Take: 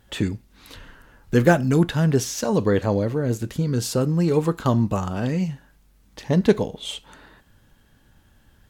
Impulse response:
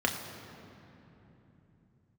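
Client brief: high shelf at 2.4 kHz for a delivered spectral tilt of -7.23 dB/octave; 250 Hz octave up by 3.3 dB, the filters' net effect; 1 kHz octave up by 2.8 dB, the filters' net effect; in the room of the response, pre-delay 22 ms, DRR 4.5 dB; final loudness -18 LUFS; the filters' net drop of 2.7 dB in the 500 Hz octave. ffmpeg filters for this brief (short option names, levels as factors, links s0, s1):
-filter_complex "[0:a]equalizer=f=250:t=o:g=6,equalizer=f=500:t=o:g=-6.5,equalizer=f=1000:t=o:g=6.5,highshelf=f=2400:g=-5,asplit=2[s0][s1];[1:a]atrim=start_sample=2205,adelay=22[s2];[s1][s2]afir=irnorm=-1:irlink=0,volume=0.188[s3];[s0][s3]amix=inputs=2:normalize=0,volume=1.06"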